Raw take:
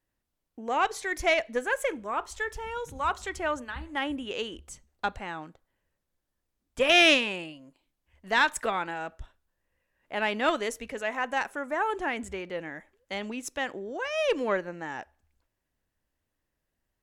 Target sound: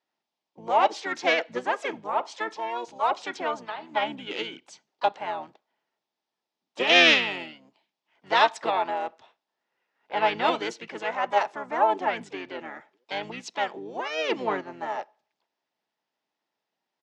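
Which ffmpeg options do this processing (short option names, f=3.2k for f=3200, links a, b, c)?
-filter_complex "[0:a]highpass=f=250:w=0.5412,highpass=f=250:w=1.3066,equalizer=f=280:t=q:w=4:g=-7,equalizer=f=560:t=q:w=4:g=-8,equalizer=f=850:t=q:w=4:g=10,equalizer=f=1.5k:t=q:w=4:g=-6,equalizer=f=3.4k:t=q:w=4:g=4,equalizer=f=5k:t=q:w=4:g=5,lowpass=f=6k:w=0.5412,lowpass=f=6k:w=1.3066,asplit=4[a][b][c][d];[b]asetrate=22050,aresample=44100,atempo=2,volume=-15dB[e];[c]asetrate=33038,aresample=44100,atempo=1.33484,volume=-4dB[f];[d]asetrate=52444,aresample=44100,atempo=0.840896,volume=-15dB[g];[a][e][f][g]amix=inputs=4:normalize=0"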